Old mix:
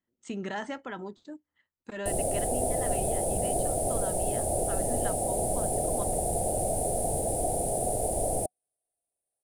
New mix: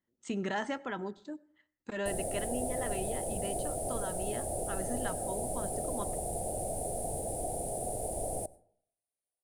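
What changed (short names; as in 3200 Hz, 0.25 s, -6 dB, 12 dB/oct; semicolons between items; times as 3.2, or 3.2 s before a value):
background -8.0 dB; reverb: on, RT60 0.60 s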